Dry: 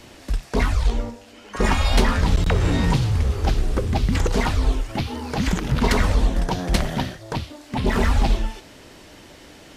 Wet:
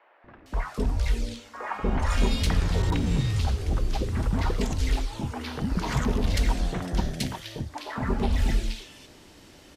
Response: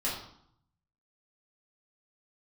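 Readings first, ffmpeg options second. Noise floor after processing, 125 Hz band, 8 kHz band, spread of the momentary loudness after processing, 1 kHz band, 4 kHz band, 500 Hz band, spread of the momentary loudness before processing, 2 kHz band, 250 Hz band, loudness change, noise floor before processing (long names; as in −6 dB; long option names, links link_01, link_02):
−52 dBFS, −5.0 dB, −5.0 dB, 10 LU, −7.0 dB, −5.5 dB, −7.0 dB, 11 LU, −7.5 dB, −5.0 dB, −5.5 dB, −46 dBFS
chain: -filter_complex "[0:a]acrossover=split=600|1900[link_01][link_02][link_03];[link_01]adelay=240[link_04];[link_03]adelay=460[link_05];[link_04][link_02][link_05]amix=inputs=3:normalize=0,volume=-5dB"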